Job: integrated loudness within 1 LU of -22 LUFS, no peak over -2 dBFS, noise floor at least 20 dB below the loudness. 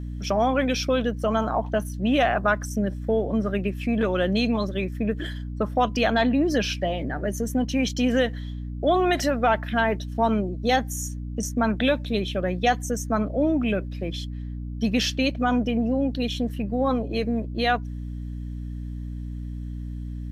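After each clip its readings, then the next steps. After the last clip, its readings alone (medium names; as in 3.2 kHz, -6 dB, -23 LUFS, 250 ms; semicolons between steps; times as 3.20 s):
hum 60 Hz; highest harmonic 300 Hz; hum level -30 dBFS; loudness -25.0 LUFS; peak level -9.5 dBFS; loudness target -22.0 LUFS
-> hum notches 60/120/180/240/300 Hz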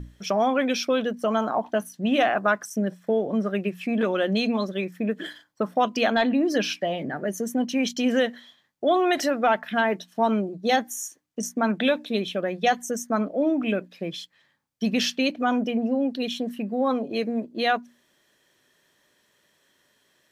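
hum not found; loudness -25.0 LUFS; peak level -9.5 dBFS; loudness target -22.0 LUFS
-> trim +3 dB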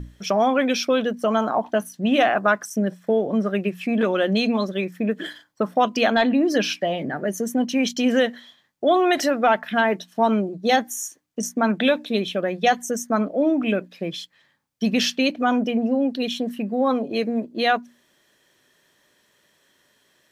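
loudness -22.0 LUFS; peak level -6.5 dBFS; noise floor -64 dBFS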